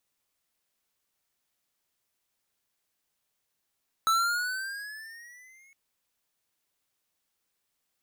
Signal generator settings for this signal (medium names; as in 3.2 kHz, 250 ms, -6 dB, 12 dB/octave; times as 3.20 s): gliding synth tone square, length 1.66 s, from 1.31 kHz, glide +9 st, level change -36 dB, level -22.5 dB